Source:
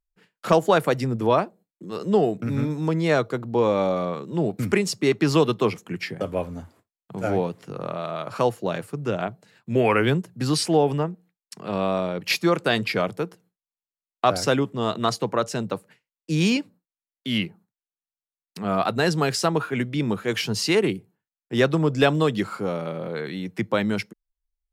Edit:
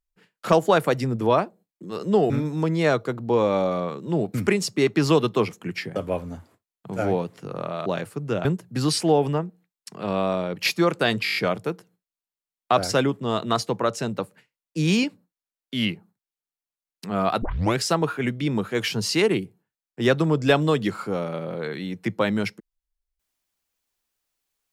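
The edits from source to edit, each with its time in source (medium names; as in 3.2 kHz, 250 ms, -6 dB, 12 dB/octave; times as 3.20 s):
2.30–2.55 s: delete
8.11–8.63 s: delete
9.22–10.10 s: delete
12.89 s: stutter 0.02 s, 7 plays
18.95 s: tape start 0.35 s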